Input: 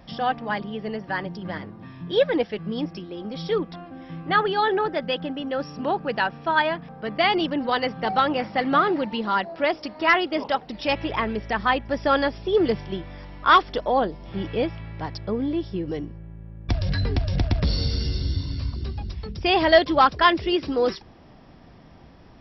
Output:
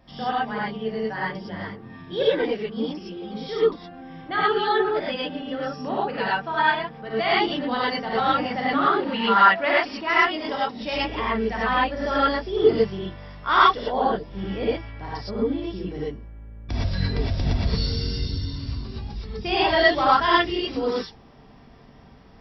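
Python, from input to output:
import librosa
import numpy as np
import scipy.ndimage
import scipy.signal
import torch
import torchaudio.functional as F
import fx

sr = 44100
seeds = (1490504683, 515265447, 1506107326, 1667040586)

y = fx.peak_eq(x, sr, hz=1700.0, db=fx.line((9.05, 13.5), (9.9, 6.0)), octaves=2.1, at=(9.05, 9.9), fade=0.02)
y = fx.rev_gated(y, sr, seeds[0], gate_ms=140, shape='rising', drr_db=-7.5)
y = y * librosa.db_to_amplitude(-8.0)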